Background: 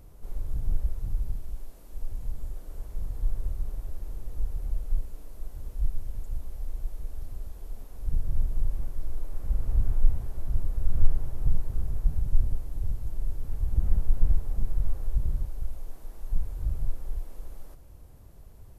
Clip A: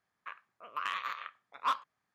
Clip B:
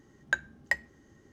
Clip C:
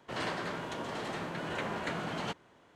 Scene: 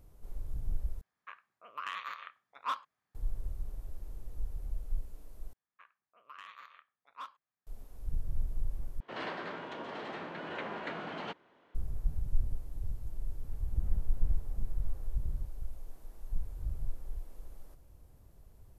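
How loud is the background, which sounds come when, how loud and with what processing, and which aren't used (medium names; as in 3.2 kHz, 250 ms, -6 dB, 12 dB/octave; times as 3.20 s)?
background -7.5 dB
1.01 s: replace with A -4 dB
5.53 s: replace with A -14.5 dB
9.00 s: replace with C -3 dB + three-band isolator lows -12 dB, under 190 Hz, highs -22 dB, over 4.4 kHz
not used: B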